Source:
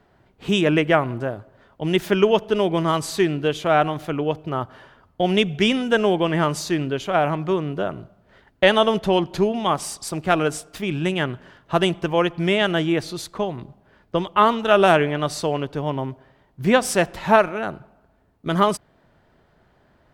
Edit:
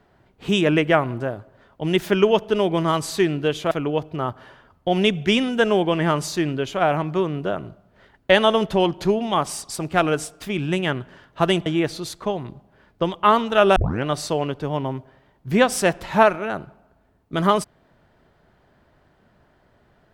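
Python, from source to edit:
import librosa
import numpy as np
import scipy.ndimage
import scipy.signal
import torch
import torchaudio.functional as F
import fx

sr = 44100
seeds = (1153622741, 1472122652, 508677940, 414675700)

y = fx.edit(x, sr, fx.cut(start_s=3.71, length_s=0.33),
    fx.cut(start_s=11.99, length_s=0.8),
    fx.tape_start(start_s=14.89, length_s=0.28), tone=tone)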